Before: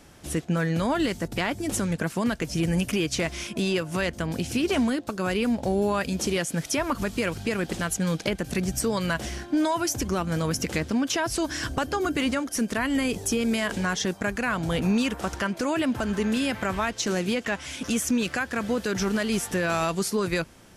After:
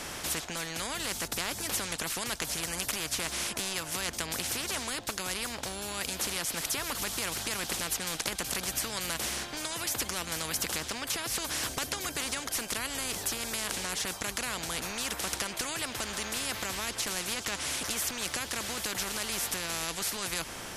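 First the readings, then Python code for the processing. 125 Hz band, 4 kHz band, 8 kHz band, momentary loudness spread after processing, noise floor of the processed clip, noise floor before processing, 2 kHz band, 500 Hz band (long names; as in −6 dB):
−14.5 dB, +0.5 dB, +2.0 dB, 2 LU, −41 dBFS, −45 dBFS, −5.0 dB, −13.0 dB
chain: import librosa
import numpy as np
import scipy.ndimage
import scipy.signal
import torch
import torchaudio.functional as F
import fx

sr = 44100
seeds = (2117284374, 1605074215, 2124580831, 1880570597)

y = fx.rider(x, sr, range_db=10, speed_s=0.5)
y = fx.spectral_comp(y, sr, ratio=4.0)
y = F.gain(torch.from_numpy(y), -2.0).numpy()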